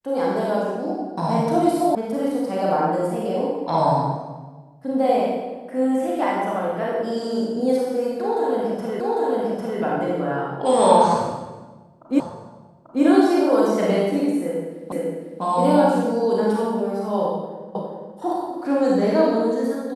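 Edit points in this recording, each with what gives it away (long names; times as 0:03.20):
0:01.95: cut off before it has died away
0:09.00: the same again, the last 0.8 s
0:12.20: the same again, the last 0.84 s
0:14.92: the same again, the last 0.5 s
0:17.75: the same again, the last 0.41 s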